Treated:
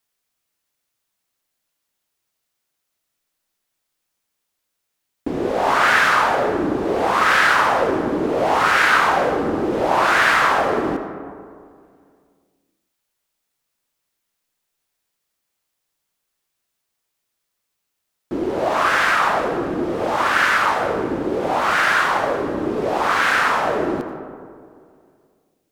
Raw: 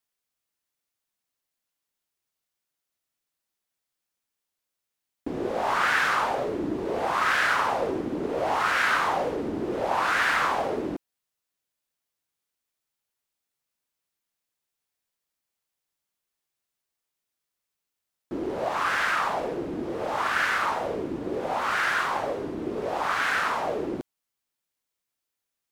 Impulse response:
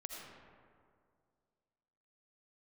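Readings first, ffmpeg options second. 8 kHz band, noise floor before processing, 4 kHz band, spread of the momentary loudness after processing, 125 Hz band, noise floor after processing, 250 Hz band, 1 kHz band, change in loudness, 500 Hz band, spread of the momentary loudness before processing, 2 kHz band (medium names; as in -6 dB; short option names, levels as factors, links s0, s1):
+7.5 dB, -85 dBFS, +8.0 dB, 11 LU, +8.0 dB, -77 dBFS, +8.5 dB, +8.5 dB, +8.0 dB, +8.5 dB, 10 LU, +8.0 dB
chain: -filter_complex "[0:a]asplit=2[s0][s1];[1:a]atrim=start_sample=2205[s2];[s1][s2]afir=irnorm=-1:irlink=0,volume=1.26[s3];[s0][s3]amix=inputs=2:normalize=0,volume=1.41"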